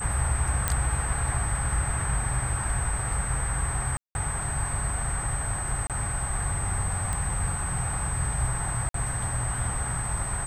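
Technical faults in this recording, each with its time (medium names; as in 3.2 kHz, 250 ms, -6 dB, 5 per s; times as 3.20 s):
whine 8.2 kHz -32 dBFS
0.68 s: pop -8 dBFS
3.97–4.15 s: dropout 181 ms
5.87–5.90 s: dropout 27 ms
7.13 s: pop -17 dBFS
8.89–8.94 s: dropout 53 ms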